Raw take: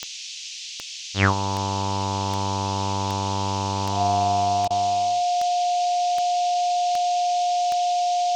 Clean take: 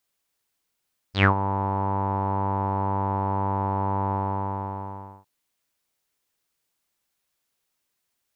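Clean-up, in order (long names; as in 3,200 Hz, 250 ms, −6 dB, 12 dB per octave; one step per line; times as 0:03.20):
click removal
notch filter 710 Hz, Q 30
repair the gap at 0:04.68, 23 ms
noise reduction from a noise print 30 dB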